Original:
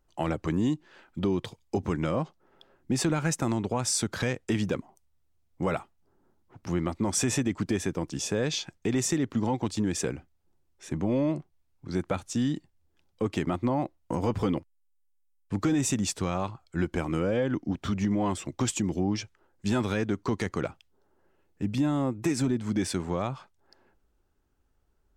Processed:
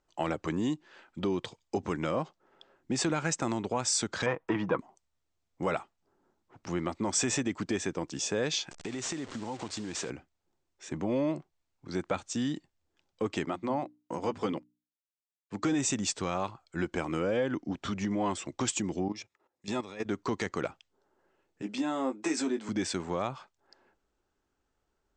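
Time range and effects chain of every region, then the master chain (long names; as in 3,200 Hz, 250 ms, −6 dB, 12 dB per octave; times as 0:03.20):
0:04.26–0:04.79: low-pass filter 2,000 Hz + parametric band 1,000 Hz +14.5 dB 0.63 octaves + comb filter 6.2 ms, depth 48%
0:08.71–0:10.10: linear delta modulator 64 kbit/s, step −35.5 dBFS + downward compressor 4 to 1, threshold −30 dBFS
0:13.46–0:15.63: high-pass filter 110 Hz + mains-hum notches 60/120/180/240/300 Hz + expander for the loud parts, over −43 dBFS
0:19.08–0:20.06: notch comb filter 1,500 Hz + output level in coarse steps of 14 dB
0:21.62–0:22.69: high-pass filter 240 Hz 24 dB per octave + double-tracking delay 19 ms −7 dB
whole clip: Butterworth low-pass 8,400 Hz 72 dB per octave; low-shelf EQ 180 Hz −12 dB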